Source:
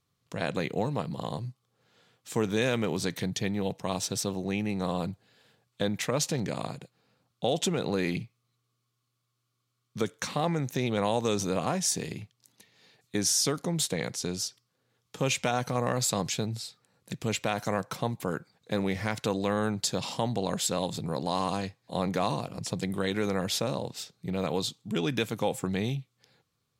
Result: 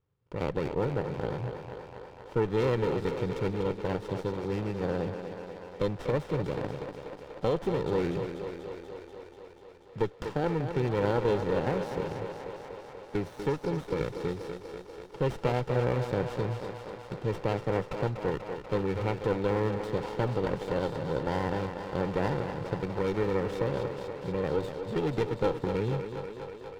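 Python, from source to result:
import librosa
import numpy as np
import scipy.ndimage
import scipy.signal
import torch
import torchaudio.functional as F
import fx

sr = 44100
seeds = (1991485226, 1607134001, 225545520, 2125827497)

y = fx.air_absorb(x, sr, metres=390.0)
y = y + 0.58 * np.pad(y, (int(2.2 * sr / 1000.0), 0))[:len(y)]
y = fx.echo_thinned(y, sr, ms=243, feedback_pct=79, hz=180.0, wet_db=-7.5)
y = fx.running_max(y, sr, window=17)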